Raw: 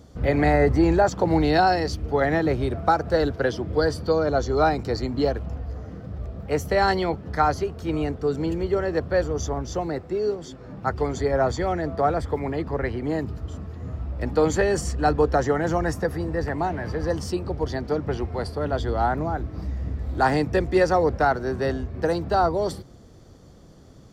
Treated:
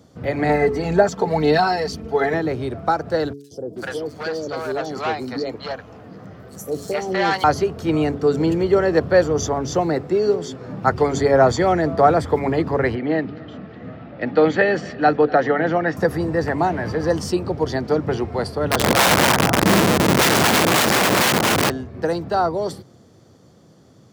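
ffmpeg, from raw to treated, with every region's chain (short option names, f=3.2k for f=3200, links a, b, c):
-filter_complex "[0:a]asettb=1/sr,asplit=3[a][b][c];[a]atrim=end=0.494[d];[b]atrim=start=0.49:end=2.34,asetpts=PTS-STARTPTS,afade=t=in:d=0.004:c=qsin,afade=t=out:st=1.846:d=0.004:c=qsin,aecho=1:1:4.5:0.75,atrim=end_sample=81585,aphaser=in_gain=1:out_gain=1:delay=2.5:decay=0.37:speed=2:type=sinusoidal[e];[c]atrim=start=2.336[f];[d][e]acrossfade=d=0.004:c1=hsin:c2=qsin[g];[g][f]acrossfade=d=0.004:c1=qsin:c2=hsin,asettb=1/sr,asplit=3[h][i][j];[h]atrim=end=3.334[k];[i]atrim=start=3.33:end=7.44,asetpts=PTS-STARTPTS,afade=t=in:d=0.004:c=qsin,afade=t=out:st=4.106:d=0.004:c=qsin,highpass=f=270:p=1,asoftclip=type=hard:threshold=-20.5dB,acrossover=split=580|5900[l][m][n];[l]adelay=180[o];[m]adelay=430[p];[o][p][n]amix=inputs=3:normalize=0,atrim=end_sample=181251[q];[j]atrim=start=7.436[r];[k][q]acrossfade=d=0.004:c1=hsin:c2=qsin[s];[s][r]acrossfade=d=0.004:c1=qsin:c2=hsin,asettb=1/sr,asplit=3[t][u][v];[t]atrim=end=12.954[w];[u]atrim=start=12.95:end=15.97,asetpts=PTS-STARTPTS,afade=t=in:d=0.004:c=qsin,afade=t=out:st=3.016:d=0.004:c=qsin,highpass=200,equalizer=f=390:t=q:w=4:g=-6,equalizer=f=1k:t=q:w=4:g=-9,equalizer=f=1.9k:t=q:w=4:g=3,lowpass=f=3.8k:w=0.5412,lowpass=f=3.8k:w=1.3066,aecho=1:1:246:0.0794,atrim=end_sample=133182[x];[v]atrim=start=15.966[y];[w][x]acrossfade=d=0.004:c1=hsin:c2=qsin[z];[z][y]acrossfade=d=0.004:c1=qsin:c2=hsin,asettb=1/sr,asplit=3[aa][ab][ac];[aa]atrim=end=18.494[ad];[ab]atrim=start=18.49:end=21.7,asetpts=PTS-STARTPTS,afade=t=in:d=0.004:c=qsin,afade=t=out:st=3.206:d=0.004:c=qsin,asubboost=boost=9.5:cutoff=150,asplit=2[ae][af];[af]adelay=229,lowpass=f=2.3k:p=1,volume=-3dB,asplit=2[ag][ah];[ah]adelay=229,lowpass=f=2.3k:p=1,volume=0.51,asplit=2[ai][aj];[aj]adelay=229,lowpass=f=2.3k:p=1,volume=0.51,asplit=2[ak][al];[al]adelay=229,lowpass=f=2.3k:p=1,volume=0.51,asplit=2[am][an];[an]adelay=229,lowpass=f=2.3k:p=1,volume=0.51,asplit=2[ao][ap];[ap]adelay=229,lowpass=f=2.3k:p=1,volume=0.51,asplit=2[aq][ar];[ar]adelay=229,lowpass=f=2.3k:p=1,volume=0.51[as];[ae][ag][ai][ak][am][ao][aq][as]amix=inputs=8:normalize=0,atrim=end_sample=141561,aeval=exprs='(mod(5.62*val(0)+1,2)-1)/5.62':c=same[at];[ac]atrim=start=21.696[au];[ad][at]acrossfade=d=0.004:c1=hsin:c2=qsin[av];[av][au]acrossfade=d=0.004:c1=qsin:c2=hsin,highpass=f=100:w=0.5412,highpass=f=100:w=1.3066,bandreject=f=141.6:t=h:w=4,bandreject=f=283.2:t=h:w=4,bandreject=f=424.8:t=h:w=4,dynaudnorm=f=670:g=13:m=11.5dB"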